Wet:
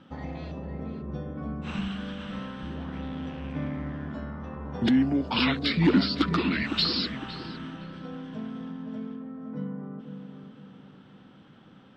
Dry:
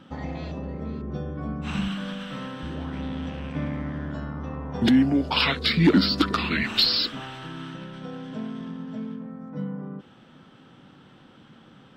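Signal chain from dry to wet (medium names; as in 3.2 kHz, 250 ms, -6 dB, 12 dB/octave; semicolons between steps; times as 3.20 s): distance through air 62 m; filtered feedback delay 509 ms, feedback 42%, low-pass 1.1 kHz, level -6.5 dB; trim -3.5 dB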